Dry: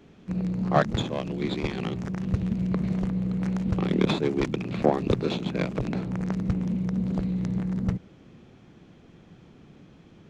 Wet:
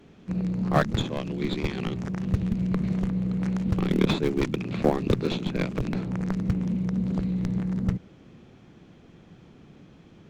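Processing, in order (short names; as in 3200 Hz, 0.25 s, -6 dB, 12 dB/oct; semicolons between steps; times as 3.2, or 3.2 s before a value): in parallel at -6 dB: Schmitt trigger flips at -17.5 dBFS; on the sum: dynamic EQ 700 Hz, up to -4 dB, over -38 dBFS, Q 1.3; gain +1 dB; MP3 160 kbps 48000 Hz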